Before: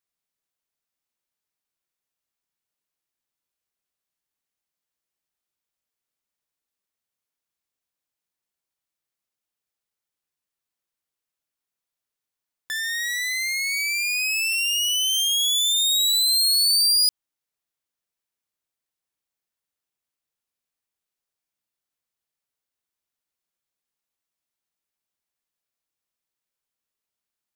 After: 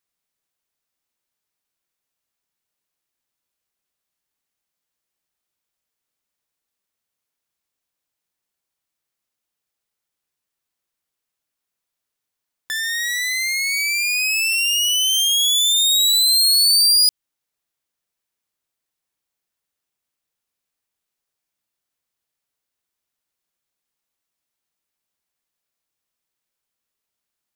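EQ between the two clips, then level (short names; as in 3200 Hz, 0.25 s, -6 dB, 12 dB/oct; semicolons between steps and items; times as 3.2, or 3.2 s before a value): dynamic EQ 840 Hz, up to -5 dB, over -46 dBFS, Q 0.99; +4.5 dB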